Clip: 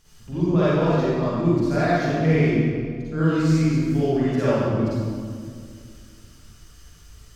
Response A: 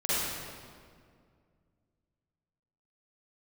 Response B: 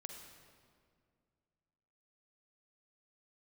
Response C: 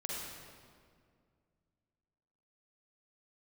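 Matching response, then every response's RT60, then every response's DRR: A; 2.1, 2.1, 2.1 s; -11.5, 3.5, -4.0 dB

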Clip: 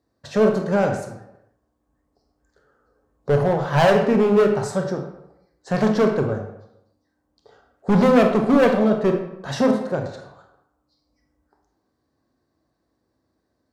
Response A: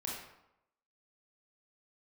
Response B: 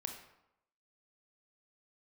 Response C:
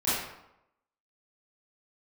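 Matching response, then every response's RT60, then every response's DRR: B; 0.85, 0.85, 0.85 s; -4.0, 4.0, -13.5 dB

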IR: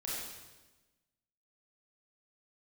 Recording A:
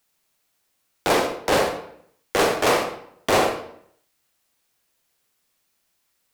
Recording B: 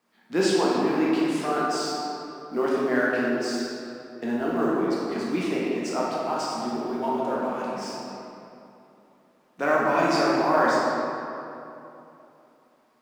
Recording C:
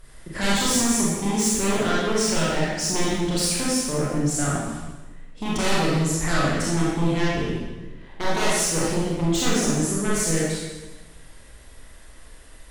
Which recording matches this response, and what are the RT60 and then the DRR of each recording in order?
C; 0.65, 2.9, 1.2 s; 5.0, -6.0, -7.0 dB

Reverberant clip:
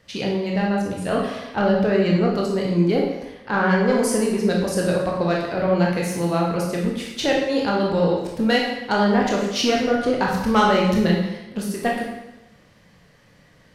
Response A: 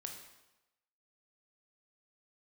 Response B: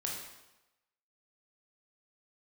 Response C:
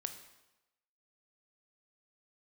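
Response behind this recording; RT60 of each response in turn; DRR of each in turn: B; 1.0, 1.0, 1.0 s; 2.5, -2.5, 7.0 dB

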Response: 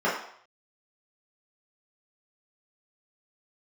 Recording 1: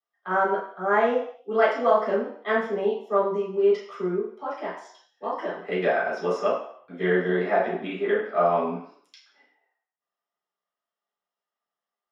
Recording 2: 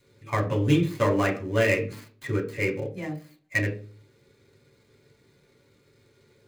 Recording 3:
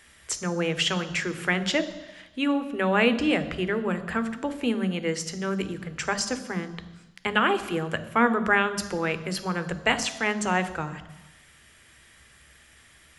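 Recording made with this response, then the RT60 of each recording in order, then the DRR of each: 1; 0.65, 0.40, 1.0 s; -9.0, 0.5, 11.5 dB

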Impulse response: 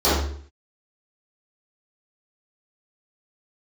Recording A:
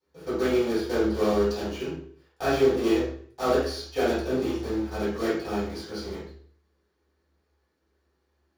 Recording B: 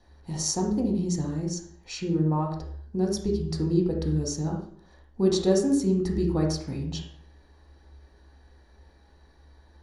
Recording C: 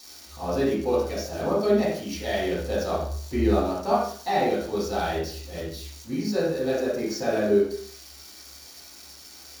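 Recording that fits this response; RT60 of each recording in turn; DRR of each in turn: A; 0.55, 0.55, 0.55 s; -15.5, -0.5, -8.0 dB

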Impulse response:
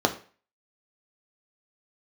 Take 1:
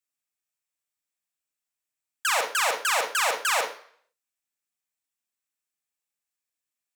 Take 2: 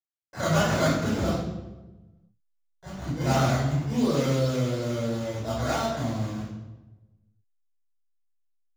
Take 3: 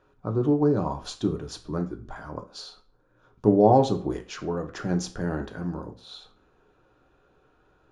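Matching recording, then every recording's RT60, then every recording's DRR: 3; not exponential, 1.1 s, 0.40 s; 3.0, -9.0, 3.5 dB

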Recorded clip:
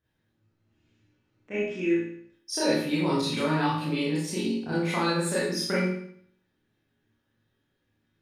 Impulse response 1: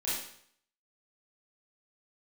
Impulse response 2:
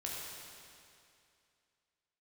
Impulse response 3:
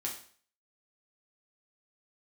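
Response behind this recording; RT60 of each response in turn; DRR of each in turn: 1; 0.65, 2.5, 0.50 s; -10.0, -4.5, -2.5 dB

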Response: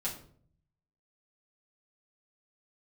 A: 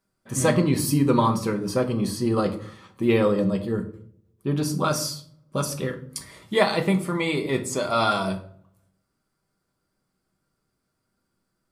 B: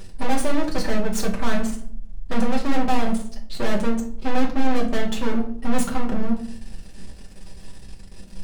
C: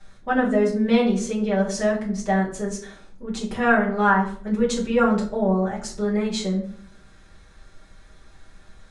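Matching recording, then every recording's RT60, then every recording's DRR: C; 0.55, 0.55, 0.55 s; 4.0, -2.0, -7.0 dB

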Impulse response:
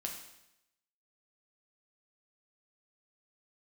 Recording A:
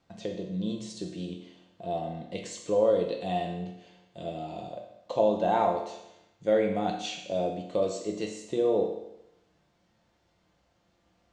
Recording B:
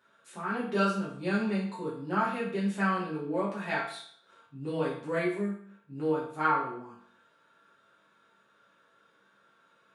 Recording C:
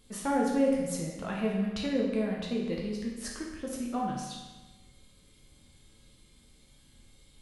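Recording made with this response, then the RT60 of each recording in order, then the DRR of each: A; 0.85, 0.60, 1.2 s; 0.5, -9.0, -3.0 dB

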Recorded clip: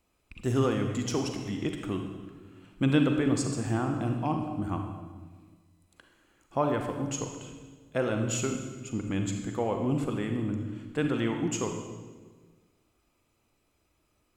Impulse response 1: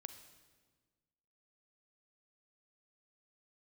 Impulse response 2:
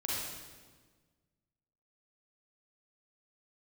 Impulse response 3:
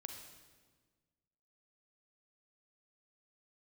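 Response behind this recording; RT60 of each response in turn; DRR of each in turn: 3; 1.5, 1.5, 1.5 s; 9.0, -6.0, 4.0 dB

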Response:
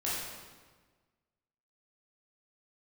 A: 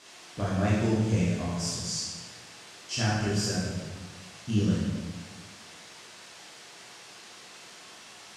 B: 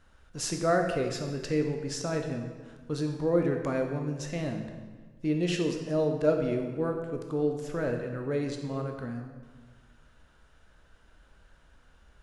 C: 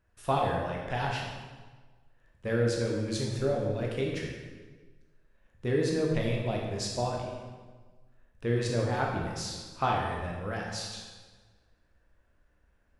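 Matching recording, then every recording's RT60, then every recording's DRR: A; 1.4, 1.4, 1.4 s; -8.5, 3.0, -2.0 dB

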